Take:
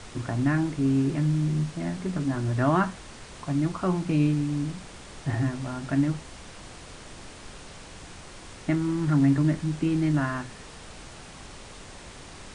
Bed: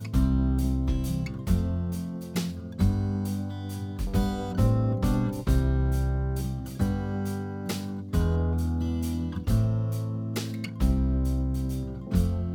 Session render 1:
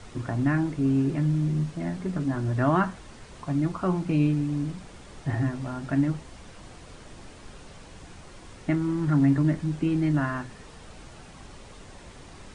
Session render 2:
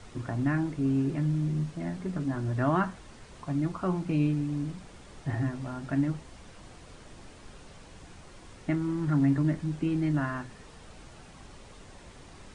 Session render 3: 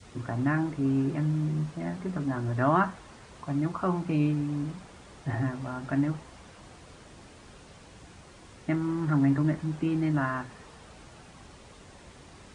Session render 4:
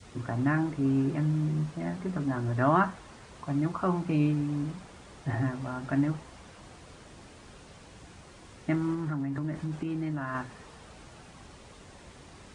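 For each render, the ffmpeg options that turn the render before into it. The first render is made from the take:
ffmpeg -i in.wav -af "afftdn=noise_reduction=6:noise_floor=-45" out.wav
ffmpeg -i in.wav -af "volume=-3.5dB" out.wav
ffmpeg -i in.wav -af "highpass=46,adynamicequalizer=threshold=0.00631:dfrequency=1000:dqfactor=0.8:tfrequency=1000:tqfactor=0.8:attack=5:release=100:ratio=0.375:range=2.5:mode=boostabove:tftype=bell" out.wav
ffmpeg -i in.wav -filter_complex "[0:a]asettb=1/sr,asplit=3[link_01][link_02][link_03];[link_01]atrim=end=8.944[link_04];[link_02]atrim=start=8.94:end=10.35,asetpts=PTS-STARTPTS,afade=type=in:duration=0.004:curve=qsin,afade=type=out:start_time=1.406:duration=0.004:curve=qsin,acompressor=threshold=-28dB:ratio=12:attack=3.2:release=140:knee=1:detection=peak[link_05];[link_03]atrim=start=10.346[link_06];[link_04][link_05]acrossfade=duration=0.004:curve1=hsin:curve2=qsin[link_07];[link_07][link_06]acrossfade=duration=0.004:curve1=qsin:curve2=hsin" out.wav

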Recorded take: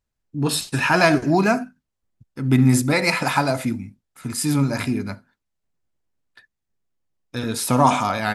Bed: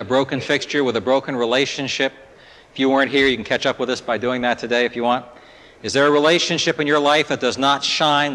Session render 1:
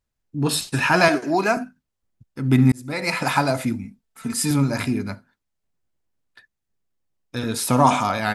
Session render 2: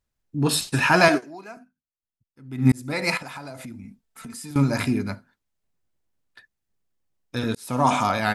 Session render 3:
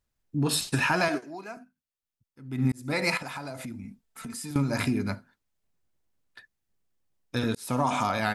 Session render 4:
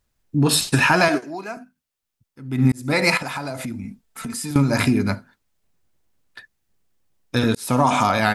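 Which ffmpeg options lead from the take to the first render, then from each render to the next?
ffmpeg -i in.wav -filter_complex "[0:a]asettb=1/sr,asplit=3[link_01][link_02][link_03];[link_01]atrim=end=1.084[link_04];[link_02]atrim=start=1.08:end=1.57,asetpts=PTS-STARTPTS,afade=type=in:duration=0.004:curve=qsin,afade=type=out:start_time=0.486:duration=0.004:curve=qsin,highpass=330[link_05];[link_03]atrim=start=1.566[link_06];[link_04][link_05]acrossfade=duration=0.004:curve1=hsin:curve2=qsin[link_07];[link_07][link_06]acrossfade=duration=0.004:curve1=qsin:curve2=hsin,asettb=1/sr,asplit=3[link_08][link_09][link_10];[link_08]atrim=end=3.844[link_11];[link_09]atrim=start=3.84:end=4.51,asetpts=PTS-STARTPTS,afade=type=in:duration=0.004:curve=qsin,afade=type=out:start_time=0.666:duration=0.004:curve=qsin,aecho=1:1:4.5:0.65,atrim=end_sample=29547[link_12];[link_10]atrim=start=4.506[link_13];[link_11][link_12]acrossfade=duration=0.004:curve1=hsin:curve2=qsin[link_14];[link_14][link_13]acrossfade=duration=0.004:curve1=qsin:curve2=hsin,asplit=2[link_15][link_16];[link_15]atrim=end=2.72,asetpts=PTS-STARTPTS,afade=type=out:start_time=2.716:duration=0.004:curve=hsin[link_17];[link_16]atrim=start=2.72,asetpts=PTS-STARTPTS,afade=type=in:duration=0.58[link_18];[link_17][link_18]concat=n=2:v=0:a=1" out.wav
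ffmpeg -i in.wav -filter_complex "[0:a]asettb=1/sr,asplit=3[link_01][link_02][link_03];[link_01]atrim=end=3.174[link_04];[link_02]atrim=start=3.17:end=4.56,asetpts=PTS-STARTPTS,afade=type=in:duration=0.004:curve=qsin,afade=type=out:start_time=1.386:duration=0.004:curve=qsin,acompressor=threshold=-36dB:ratio=5:attack=3.2:release=140:knee=1:detection=peak[link_05];[link_03]atrim=start=4.556[link_06];[link_04][link_05]acrossfade=duration=0.004:curve1=hsin:curve2=qsin[link_07];[link_07][link_06]acrossfade=duration=0.004:curve1=qsin:curve2=hsin,asplit=4[link_08][link_09][link_10][link_11];[link_08]atrim=end=1.61,asetpts=PTS-STARTPTS,afade=type=out:start_time=1.17:duration=0.44:curve=exp:silence=0.0944061[link_12];[link_09]atrim=start=1.61:end=2.23,asetpts=PTS-STARTPTS,volume=-20.5dB[link_13];[link_10]atrim=start=2.23:end=7.55,asetpts=PTS-STARTPTS,afade=type=in:duration=0.44:curve=exp:silence=0.0944061,afade=type=out:start_time=5.316:duration=0.004:curve=hsin[link_14];[link_11]atrim=start=7.55,asetpts=PTS-STARTPTS,afade=type=in:duration=0.48[link_15];[link_12][link_13][link_14][link_15]concat=n=4:v=0:a=1" out.wav
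ffmpeg -i in.wav -af "acompressor=threshold=-22dB:ratio=6" out.wav
ffmpeg -i in.wav -af "volume=8.5dB" out.wav

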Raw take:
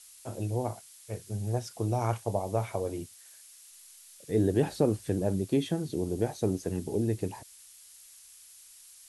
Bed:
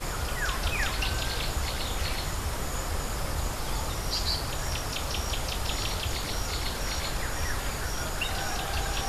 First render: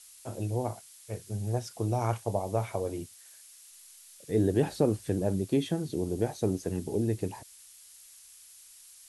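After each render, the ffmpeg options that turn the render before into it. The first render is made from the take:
ffmpeg -i in.wav -af anull out.wav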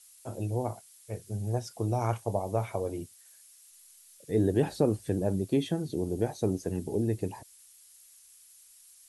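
ffmpeg -i in.wav -af "afftdn=noise_reduction=6:noise_floor=-54" out.wav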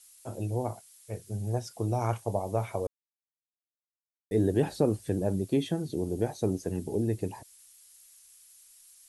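ffmpeg -i in.wav -filter_complex "[0:a]asplit=3[link_01][link_02][link_03];[link_01]atrim=end=2.87,asetpts=PTS-STARTPTS,afade=type=out:start_time=2.866:duration=0.004:curve=hsin[link_04];[link_02]atrim=start=2.87:end=4.31,asetpts=PTS-STARTPTS,volume=0[link_05];[link_03]atrim=start=4.31,asetpts=PTS-STARTPTS,afade=type=in:duration=0.004:curve=hsin[link_06];[link_04][link_05][link_06]concat=n=3:v=0:a=1" out.wav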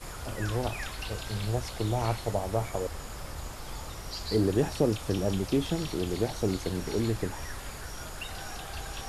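ffmpeg -i in.wav -i bed.wav -filter_complex "[1:a]volume=-8.5dB[link_01];[0:a][link_01]amix=inputs=2:normalize=0" out.wav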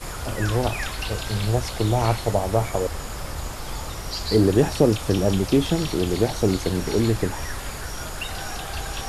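ffmpeg -i in.wav -af "volume=8dB" out.wav

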